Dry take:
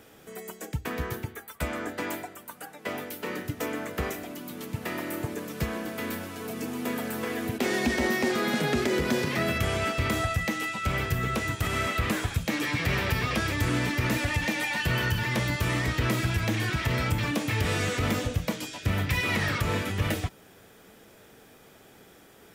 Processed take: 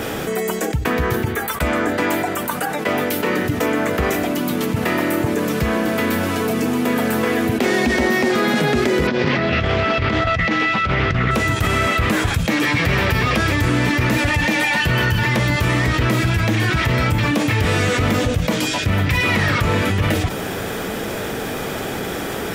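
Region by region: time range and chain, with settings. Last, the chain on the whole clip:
9.07–11.31 s: low-pass 5 kHz 24 dB/octave + compressor with a negative ratio -29 dBFS, ratio -0.5 + loudspeaker Doppler distortion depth 0.23 ms
whole clip: treble shelf 4.2 kHz -5.5 dB; level flattener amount 70%; trim +6.5 dB

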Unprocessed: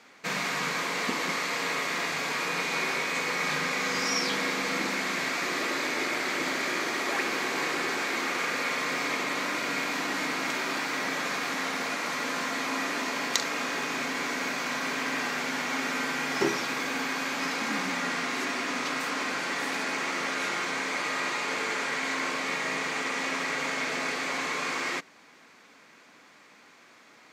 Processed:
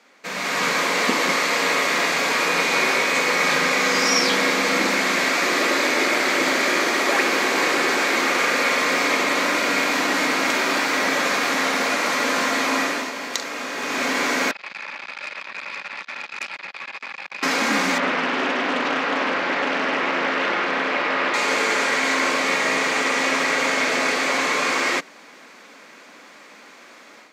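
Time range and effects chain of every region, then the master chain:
14.51–17.43 s: ladder high-pass 710 Hz, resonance 65% + frequency inversion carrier 3.3 kHz + transformer saturation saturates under 3.9 kHz
17.98–21.34 s: Gaussian low-pass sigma 2.2 samples + loudspeaker Doppler distortion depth 0.49 ms
whole clip: high-pass 180 Hz 24 dB/octave; peaking EQ 560 Hz +4.5 dB 0.29 oct; level rider gain up to 10.5 dB; trim -1 dB

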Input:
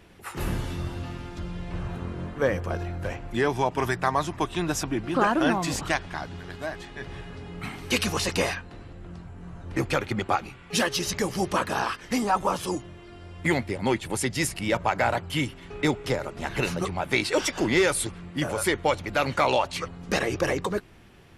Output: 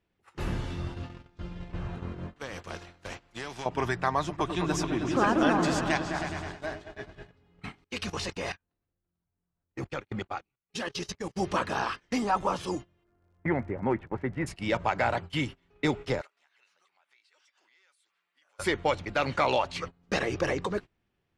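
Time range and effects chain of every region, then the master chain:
2.36–3.66 s: compression 20:1, threshold -24 dBFS + spectrum-flattening compressor 2:1
4.18–7.31 s: treble shelf 9.8 kHz +5.5 dB + delay with an opening low-pass 105 ms, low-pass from 400 Hz, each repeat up 2 oct, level -3 dB
7.84–11.36 s: gate -32 dBFS, range -13 dB + level held to a coarse grid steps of 15 dB
13.03–14.46 s: low-pass 1.8 kHz 24 dB/octave + crackle 75 per s -42 dBFS
16.21–18.59 s: high-pass 1.3 kHz + compression 3:1, threshold -41 dBFS
whole clip: gate -33 dBFS, range -22 dB; low-pass 6.4 kHz 12 dB/octave; trim -3 dB

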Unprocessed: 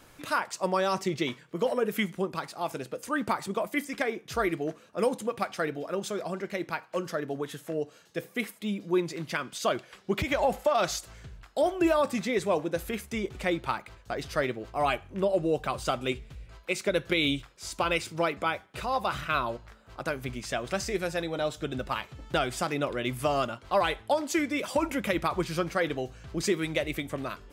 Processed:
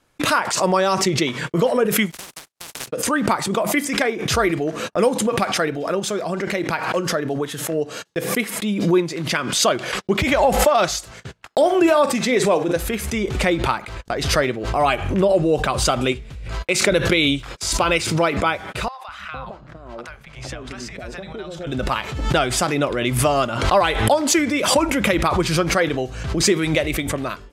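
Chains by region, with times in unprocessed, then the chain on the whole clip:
2.10–2.87 s: spectral contrast reduction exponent 0.12 + gate -38 dBFS, range -33 dB + compression 10:1, threshold -39 dBFS
11.11–12.76 s: high-pass 170 Hz + doubling 47 ms -13.5 dB
18.88–21.67 s: low-pass 2.9 kHz 6 dB/octave + compression 16:1, threshold -35 dBFS + three bands offset in time highs, lows, mids 200/460 ms, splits 150/780 Hz
whole clip: low-pass 12 kHz 12 dB/octave; gate -47 dBFS, range -57 dB; swell ahead of each attack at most 53 dB/s; trim +8.5 dB

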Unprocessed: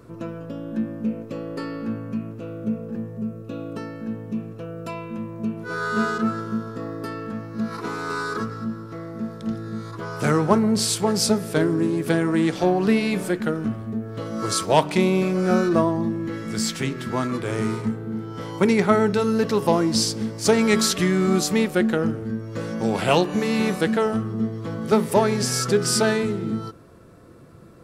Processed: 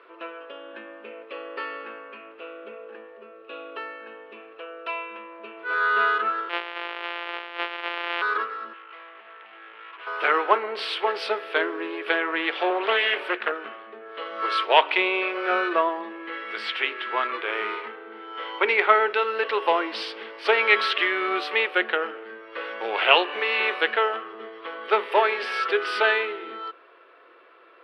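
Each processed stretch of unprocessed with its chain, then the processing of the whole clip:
6.49–8.22 s: sorted samples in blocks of 256 samples + treble shelf 12 kHz -10 dB
8.73–10.07 s: steep low-pass 2.6 kHz + tilt EQ +3.5 dB/octave + valve stage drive 43 dB, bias 0.7
12.70–13.52 s: high-pass 160 Hz 24 dB/octave + treble shelf 9.6 kHz +7 dB + loudspeaker Doppler distortion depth 0.49 ms
whole clip: elliptic band-pass 380–3000 Hz, stop band 40 dB; tilt shelf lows -10 dB, about 840 Hz; trim +1.5 dB

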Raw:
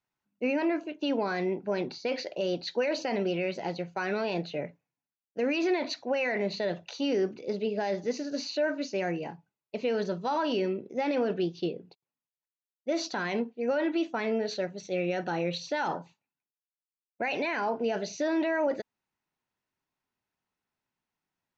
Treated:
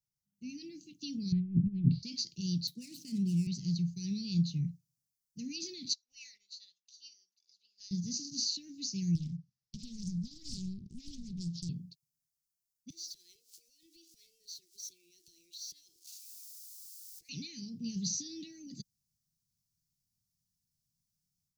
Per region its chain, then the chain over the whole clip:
1.32–2.03 s: steep low-pass 3 kHz + bass shelf 420 Hz +10.5 dB + compressor with a negative ratio -30 dBFS, ratio -0.5
2.67–3.47 s: median filter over 9 samples + high-pass 120 Hz 24 dB/octave + treble shelf 4.6 kHz -9.5 dB
5.93–7.91 s: high-pass 810 Hz 24 dB/octave + upward expansion 2.5:1, over -44 dBFS
9.15–11.69 s: steep low-pass 5.8 kHz + compression 3:1, threshold -36 dBFS + loudspeaker Doppler distortion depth 0.83 ms
12.90–17.29 s: jump at every zero crossing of -46.5 dBFS + steep high-pass 330 Hz 96 dB/octave + compression 4:1, threshold -47 dBFS
whole clip: elliptic band-stop 160–5100 Hz, stop band 60 dB; dynamic bell 130 Hz, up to +4 dB, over -54 dBFS, Q 1.1; level rider gain up to 9 dB

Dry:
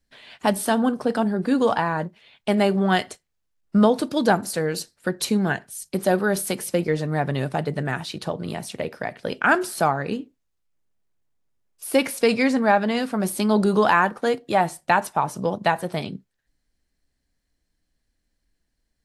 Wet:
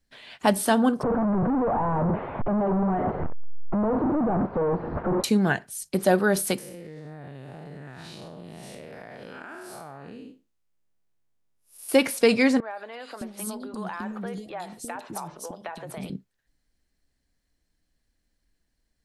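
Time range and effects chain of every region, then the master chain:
1.03–5.24 s: one-bit comparator + low-pass 1.1 kHz 24 dB/octave
6.58–11.89 s: spectral blur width 180 ms + compression 10:1, threshold -37 dBFS
12.60–16.10 s: compression 16:1, threshold -29 dBFS + three bands offset in time mids, highs, lows 110/610 ms, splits 370/3300 Hz
whole clip: none

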